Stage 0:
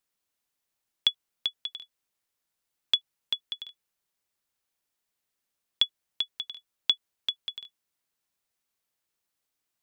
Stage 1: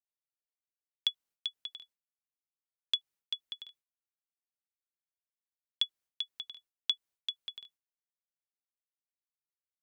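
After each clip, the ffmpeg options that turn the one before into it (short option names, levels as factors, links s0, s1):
-af "agate=range=0.0224:threshold=0.00251:ratio=3:detection=peak,volume=0.473"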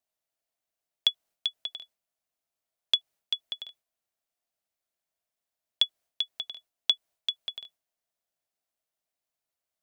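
-af "equalizer=f=660:t=o:w=0.37:g=12,volume=2.11"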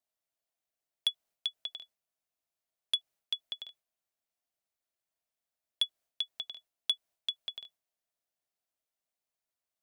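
-af "asoftclip=type=tanh:threshold=0.178,volume=0.668"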